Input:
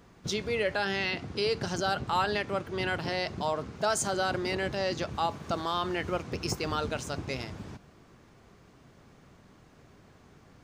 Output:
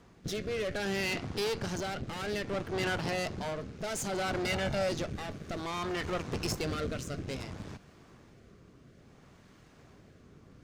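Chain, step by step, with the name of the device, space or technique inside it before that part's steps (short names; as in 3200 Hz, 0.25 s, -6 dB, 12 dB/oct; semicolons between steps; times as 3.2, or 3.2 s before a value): overdriven rotary cabinet (tube stage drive 34 dB, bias 0.8; rotary speaker horn 0.6 Hz); 4.45–4.89 comb 1.4 ms, depth 56%; gain +6.5 dB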